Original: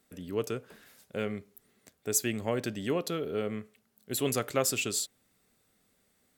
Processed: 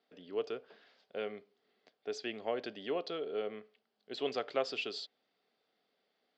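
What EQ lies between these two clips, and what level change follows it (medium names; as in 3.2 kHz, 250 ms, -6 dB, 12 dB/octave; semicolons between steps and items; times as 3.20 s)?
distance through air 110 m; cabinet simulation 330–5000 Hz, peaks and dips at 440 Hz +4 dB, 710 Hz +7 dB, 3.2 kHz +6 dB, 4.7 kHz +8 dB; -6.0 dB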